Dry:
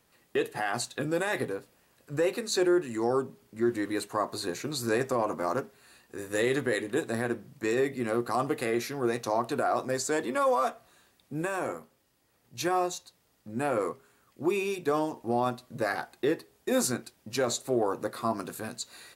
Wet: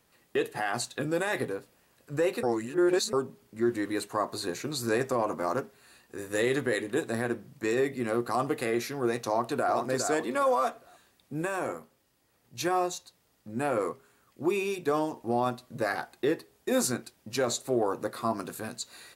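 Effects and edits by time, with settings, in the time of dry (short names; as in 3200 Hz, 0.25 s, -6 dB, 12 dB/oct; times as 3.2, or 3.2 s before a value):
2.43–3.13 reverse
9.27–9.73 echo throw 0.41 s, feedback 25%, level -6 dB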